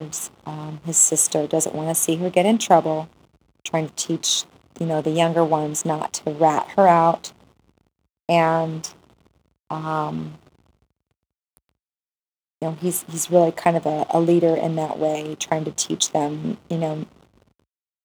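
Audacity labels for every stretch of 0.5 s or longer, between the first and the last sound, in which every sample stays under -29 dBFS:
3.040000	3.660000	silence
7.270000	8.290000	silence
8.880000	9.710000	silence
10.290000	12.620000	silence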